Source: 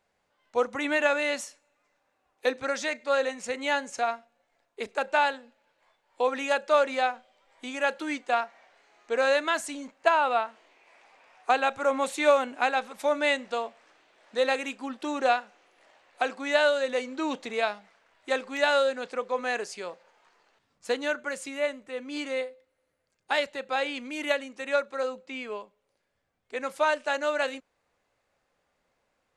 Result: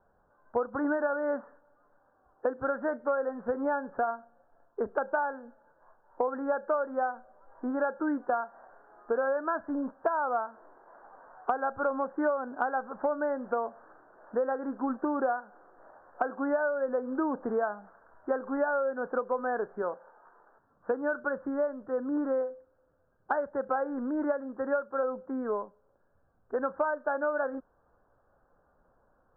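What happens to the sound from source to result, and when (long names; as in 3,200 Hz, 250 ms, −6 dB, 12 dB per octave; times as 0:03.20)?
0:19.82–0:20.91: low-shelf EQ 190 Hz −9.5 dB
whole clip: Butterworth low-pass 1,600 Hz 96 dB per octave; low-shelf EQ 67 Hz +10.5 dB; downward compressor 8 to 1, threshold −33 dBFS; level +7 dB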